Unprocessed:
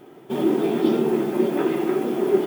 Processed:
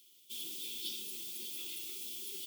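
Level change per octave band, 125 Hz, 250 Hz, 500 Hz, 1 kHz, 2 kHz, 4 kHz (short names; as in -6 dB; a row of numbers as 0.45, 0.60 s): under -35 dB, -38.5 dB, -40.0 dB, under -40 dB, -17.5 dB, -0.5 dB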